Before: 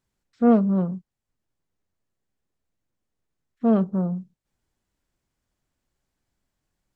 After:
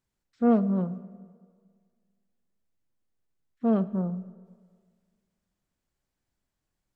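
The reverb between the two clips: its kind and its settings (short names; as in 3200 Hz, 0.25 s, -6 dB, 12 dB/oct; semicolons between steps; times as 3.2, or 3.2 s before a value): digital reverb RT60 1.8 s, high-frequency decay 0.65×, pre-delay 25 ms, DRR 17 dB; gain -4.5 dB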